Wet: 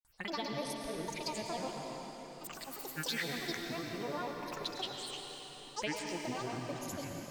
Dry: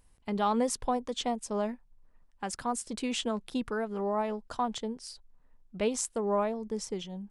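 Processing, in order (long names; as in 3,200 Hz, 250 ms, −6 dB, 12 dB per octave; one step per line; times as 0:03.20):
tilt shelving filter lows −8.5 dB, about 680 Hz
downward compressor, threshold −29 dBFS, peak gain reduction 8.5 dB
phaser swept by the level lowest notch 480 Hz, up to 1,300 Hz, full sweep at −32.5 dBFS
granular cloud, pitch spread up and down by 12 semitones
on a send: convolution reverb RT60 4.7 s, pre-delay 94 ms, DRR 1 dB
on the sum: level −1.5 dB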